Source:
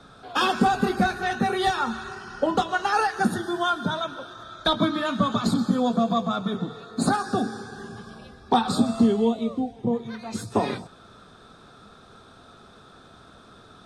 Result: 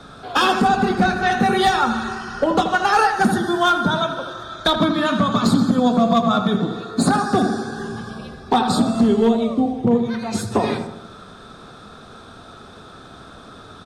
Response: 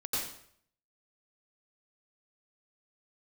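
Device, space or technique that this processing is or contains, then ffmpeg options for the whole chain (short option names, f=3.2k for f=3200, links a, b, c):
limiter into clipper: -filter_complex "[0:a]alimiter=limit=-14dB:level=0:latency=1:release=386,asoftclip=type=hard:threshold=-17.5dB,asettb=1/sr,asplit=3[a][b][c];[a]atrim=end=0.684[d];[b]atrim=start=0.68:end=1.32,asetpts=PTS-STARTPTS,afade=t=in:d=0.004:c=qsin,afade=t=out:st=0.636:d=0.004:c=qsin,lowpass=7.9k[e];[c]atrim=start=1.316[f];[d][e]acrossfade=d=0.004:c1=hsin:c2=qsin[g];[g][f]acrossfade=d=0.004:c1=qsin:c2=hsin,asplit=2[h][i];[i]adelay=80,lowpass=f=1.8k:p=1,volume=-7dB,asplit=2[j][k];[k]adelay=80,lowpass=f=1.8k:p=1,volume=0.52,asplit=2[l][m];[m]adelay=80,lowpass=f=1.8k:p=1,volume=0.52,asplit=2[n][o];[o]adelay=80,lowpass=f=1.8k:p=1,volume=0.52,asplit=2[p][q];[q]adelay=80,lowpass=f=1.8k:p=1,volume=0.52,asplit=2[r][s];[s]adelay=80,lowpass=f=1.8k:p=1,volume=0.52[t];[h][j][l][n][p][r][t]amix=inputs=7:normalize=0,volume=8dB"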